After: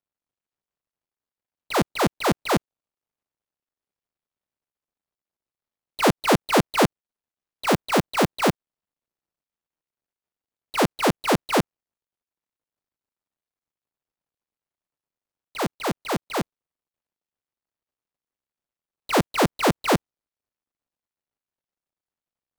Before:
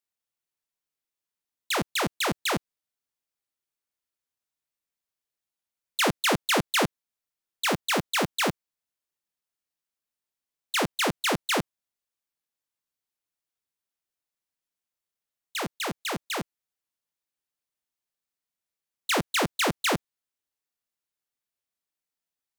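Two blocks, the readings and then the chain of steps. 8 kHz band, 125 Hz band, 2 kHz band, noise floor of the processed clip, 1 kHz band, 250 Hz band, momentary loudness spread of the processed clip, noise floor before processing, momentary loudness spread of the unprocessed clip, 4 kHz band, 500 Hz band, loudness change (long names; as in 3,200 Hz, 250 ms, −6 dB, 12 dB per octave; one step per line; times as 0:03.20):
−1.5 dB, +7.5 dB, 0.0 dB, below −85 dBFS, +5.5 dB, +7.5 dB, 9 LU, below −85 dBFS, 10 LU, −1.5 dB, +7.0 dB, +3.5 dB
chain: running median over 25 samples
level +7.5 dB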